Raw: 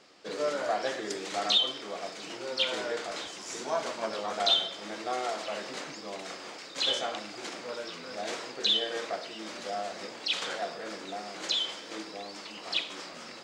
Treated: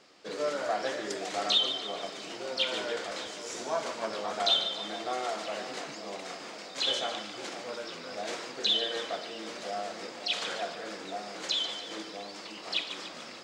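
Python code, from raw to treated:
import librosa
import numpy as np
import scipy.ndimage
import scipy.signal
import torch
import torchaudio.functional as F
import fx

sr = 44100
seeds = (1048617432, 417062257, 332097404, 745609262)

y = fx.echo_split(x, sr, split_hz=1000.0, low_ms=522, high_ms=146, feedback_pct=52, wet_db=-10.5)
y = y * 10.0 ** (-1.0 / 20.0)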